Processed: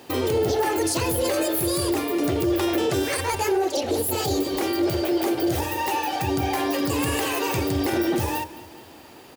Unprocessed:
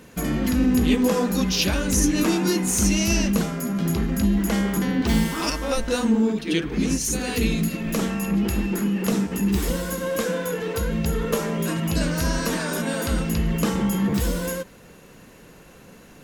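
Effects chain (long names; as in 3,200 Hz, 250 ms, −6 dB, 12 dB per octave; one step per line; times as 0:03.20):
high-pass filter 51 Hz
mains-hum notches 60/120/180/240/300/360/420/480/540 Hz
brickwall limiter −16.5 dBFS, peak gain reduction 8.5 dB
repeating echo 365 ms, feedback 52%, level −18 dB
wrong playback speed 45 rpm record played at 78 rpm
level +1.5 dB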